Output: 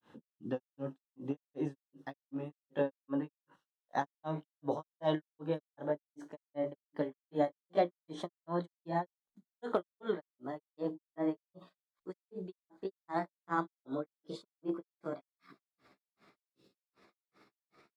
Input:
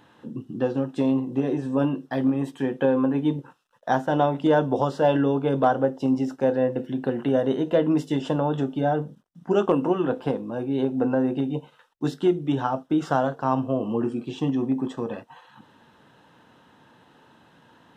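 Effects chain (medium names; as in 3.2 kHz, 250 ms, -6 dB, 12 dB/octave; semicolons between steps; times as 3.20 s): pitch bend over the whole clip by +5.5 st starting unshifted; granulator 220 ms, grains 2.6 per s, pitch spread up and down by 0 st; time-frequency box 16.48–16.75 s, 570–2500 Hz -15 dB; trim -7 dB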